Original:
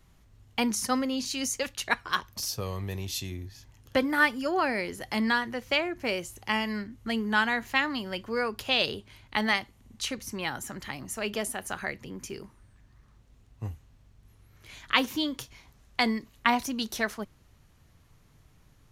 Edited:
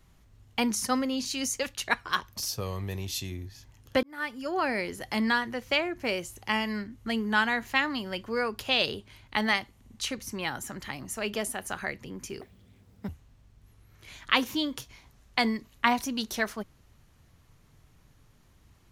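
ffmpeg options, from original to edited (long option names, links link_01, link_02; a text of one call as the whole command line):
ffmpeg -i in.wav -filter_complex "[0:a]asplit=4[link_01][link_02][link_03][link_04];[link_01]atrim=end=4.03,asetpts=PTS-STARTPTS,afade=type=out:start_time=4.026:duration=0.004:curve=hsin[link_05];[link_02]atrim=start=4.03:end=12.414,asetpts=PTS-STARTPTS,afade=type=in:duration=0.7[link_06];[link_03]atrim=start=12.41:end=13.7,asetpts=PTS-STARTPTS,asetrate=84231,aresample=44100[link_07];[link_04]atrim=start=13.696[link_08];[link_05][link_06]concat=n=2:v=0:a=1[link_09];[link_09][link_07]acrossfade=duration=0.004:curve1=hsin:curve2=hsin[link_10];[link_10][link_08]acrossfade=duration=0.004:curve1=hsin:curve2=hsin" out.wav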